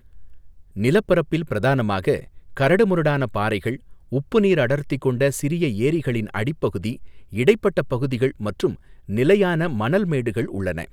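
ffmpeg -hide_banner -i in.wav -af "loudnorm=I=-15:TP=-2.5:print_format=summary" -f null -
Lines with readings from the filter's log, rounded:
Input Integrated:    -21.6 LUFS
Input True Peak:      -2.6 dBTP
Input LRA:             1.1 LU
Input Threshold:     -31.9 LUFS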